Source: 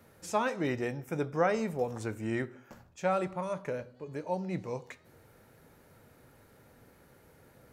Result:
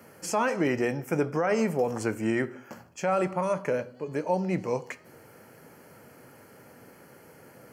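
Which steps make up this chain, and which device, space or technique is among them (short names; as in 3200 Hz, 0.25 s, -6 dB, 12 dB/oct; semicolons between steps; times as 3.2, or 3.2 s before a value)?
PA system with an anti-feedback notch (HPF 150 Hz 12 dB/oct; Butterworth band-stop 3700 Hz, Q 4.8; limiter -24.5 dBFS, peak gain reduction 11 dB); gain +8.5 dB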